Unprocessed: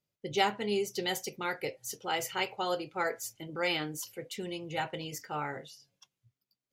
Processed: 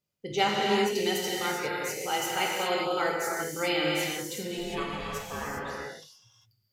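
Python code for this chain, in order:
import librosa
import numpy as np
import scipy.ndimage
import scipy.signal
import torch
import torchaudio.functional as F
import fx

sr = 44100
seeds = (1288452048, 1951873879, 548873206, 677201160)

y = fx.ring_mod(x, sr, carrier_hz=360.0, at=(4.57, 5.45), fade=0.02)
y = fx.rev_gated(y, sr, seeds[0], gate_ms=430, shape='flat', drr_db=-3.5)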